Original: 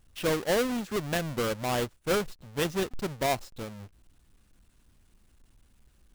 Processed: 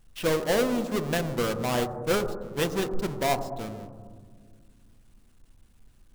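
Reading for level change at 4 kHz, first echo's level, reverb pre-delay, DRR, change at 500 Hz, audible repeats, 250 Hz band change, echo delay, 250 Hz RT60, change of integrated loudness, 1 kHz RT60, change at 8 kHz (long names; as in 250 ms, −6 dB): +1.0 dB, no echo audible, 4 ms, 8.5 dB, +2.5 dB, no echo audible, +3.0 dB, no echo audible, 3.0 s, +2.5 dB, 1.6 s, +1.0 dB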